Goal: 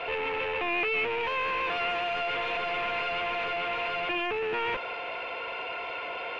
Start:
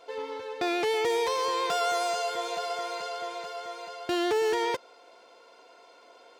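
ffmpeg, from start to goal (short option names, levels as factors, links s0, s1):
-filter_complex "[0:a]aeval=exprs='clip(val(0),-1,0.00891)':c=same,asplit=2[s0][s1];[s1]highpass=f=720:p=1,volume=56.2,asoftclip=type=tanh:threshold=0.112[s2];[s0][s2]amix=inputs=2:normalize=0,lowpass=f=1600:p=1,volume=0.501,lowpass=f=2600:t=q:w=5.8,volume=0.501"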